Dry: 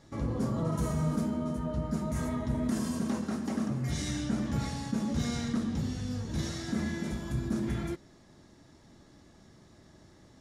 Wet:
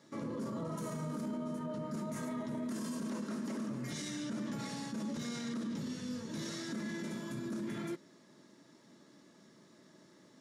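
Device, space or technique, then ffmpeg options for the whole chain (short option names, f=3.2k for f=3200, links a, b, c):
PA system with an anti-feedback notch: -af "highpass=f=170:w=0.5412,highpass=f=170:w=1.3066,asuperstop=centerf=760:order=4:qfactor=5.3,alimiter=level_in=6dB:limit=-24dB:level=0:latency=1:release=20,volume=-6dB,volume=-2dB"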